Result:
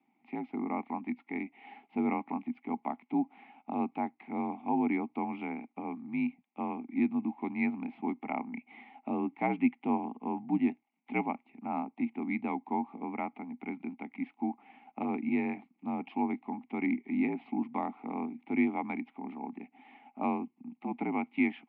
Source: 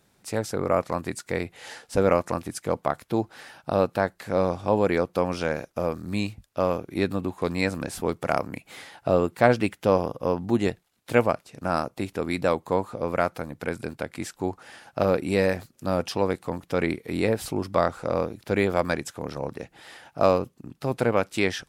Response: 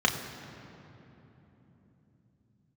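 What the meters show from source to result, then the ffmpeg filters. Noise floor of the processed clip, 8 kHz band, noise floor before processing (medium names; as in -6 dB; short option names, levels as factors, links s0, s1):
-76 dBFS, under -40 dB, -65 dBFS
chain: -filter_complex "[0:a]asplit=3[s0][s1][s2];[s0]bandpass=f=300:t=q:w=8,volume=1[s3];[s1]bandpass=f=870:t=q:w=8,volume=0.501[s4];[s2]bandpass=f=2240:t=q:w=8,volume=0.355[s5];[s3][s4][s5]amix=inputs=3:normalize=0,highpass=f=280:t=q:w=0.5412,highpass=f=280:t=q:w=1.307,lowpass=f=3100:t=q:w=0.5176,lowpass=f=3100:t=q:w=0.7071,lowpass=f=3100:t=q:w=1.932,afreqshift=-53,volume=2"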